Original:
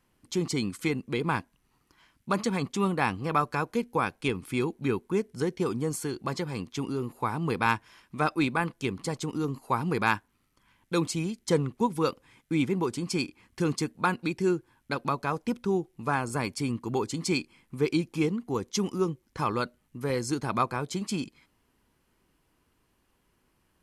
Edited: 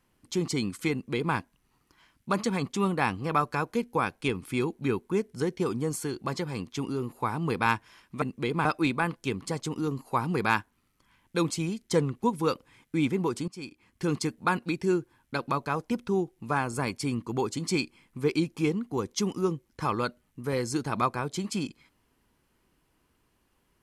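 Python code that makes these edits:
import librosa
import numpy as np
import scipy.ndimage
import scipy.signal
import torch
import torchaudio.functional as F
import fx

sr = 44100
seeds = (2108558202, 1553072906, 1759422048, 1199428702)

y = fx.edit(x, sr, fx.duplicate(start_s=0.92, length_s=0.43, to_s=8.22),
    fx.fade_in_from(start_s=13.05, length_s=0.67, floor_db=-20.5), tone=tone)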